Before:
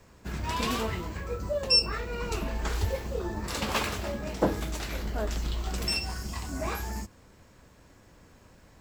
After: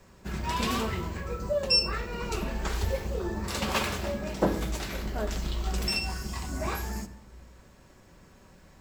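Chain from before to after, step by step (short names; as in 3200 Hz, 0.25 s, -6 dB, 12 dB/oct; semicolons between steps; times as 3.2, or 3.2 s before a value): shoebox room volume 3500 m³, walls furnished, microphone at 1.1 m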